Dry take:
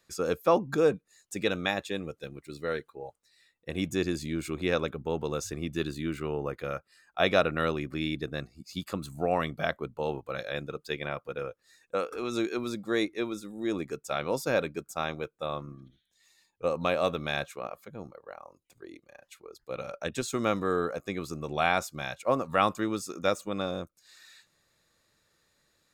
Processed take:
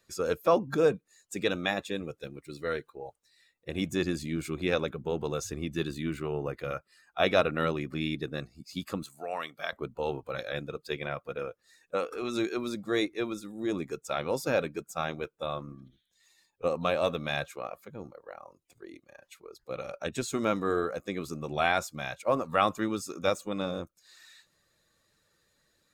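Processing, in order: coarse spectral quantiser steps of 15 dB; 9.03–9.73 s: high-pass 1.4 kHz 6 dB/octave

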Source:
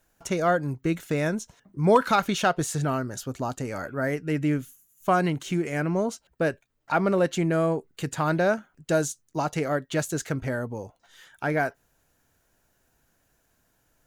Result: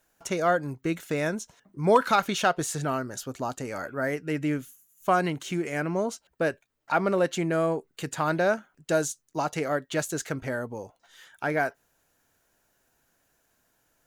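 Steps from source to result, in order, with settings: bass shelf 180 Hz -9 dB

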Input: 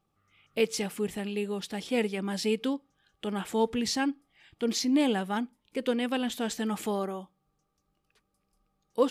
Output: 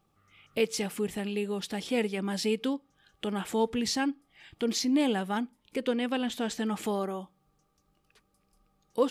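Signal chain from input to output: 5.81–6.84 s: treble shelf 10 kHz -9 dB; in parallel at +3 dB: compression, threshold -41 dBFS, peak gain reduction 20.5 dB; on the sum: trim -2.5 dB

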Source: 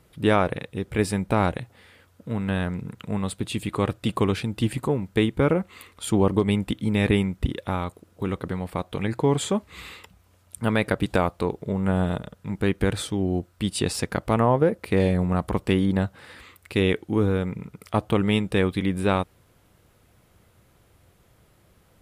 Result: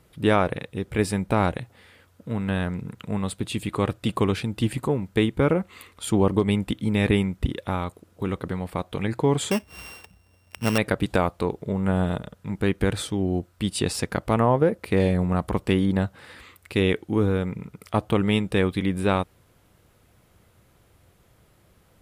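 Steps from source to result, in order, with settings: 9.51–10.78 s: sorted samples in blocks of 16 samples

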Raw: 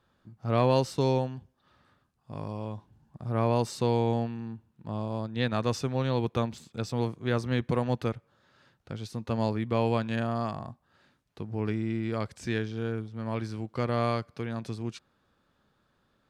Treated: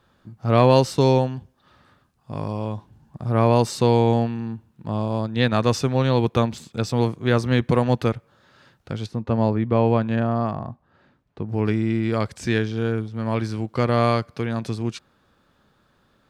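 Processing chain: 9.06–11.49 s: low-pass 1.2 kHz 6 dB/octave; trim +8.5 dB

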